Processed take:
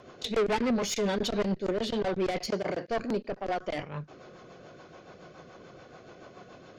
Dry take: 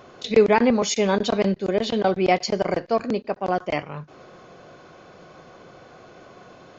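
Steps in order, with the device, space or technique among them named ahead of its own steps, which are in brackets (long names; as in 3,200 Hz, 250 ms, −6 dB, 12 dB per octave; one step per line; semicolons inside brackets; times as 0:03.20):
overdriven rotary cabinet (tube saturation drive 22 dB, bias 0.35; rotating-speaker cabinet horn 7 Hz)
0:02.47–0:02.88: high-pass filter 110 Hz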